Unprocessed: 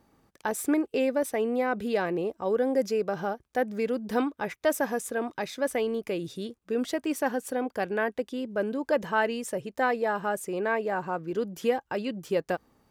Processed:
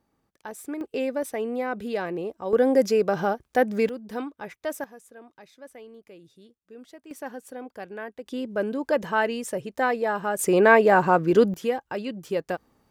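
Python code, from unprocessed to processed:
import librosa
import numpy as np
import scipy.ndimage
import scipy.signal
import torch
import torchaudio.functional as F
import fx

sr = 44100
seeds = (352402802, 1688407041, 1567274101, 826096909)

y = fx.gain(x, sr, db=fx.steps((0.0, -8.5), (0.81, -1.5), (2.53, 6.0), (3.89, -5.5), (4.84, -17.0), (7.11, -8.5), (8.26, 2.0), (10.39, 12.0), (11.54, 0.0)))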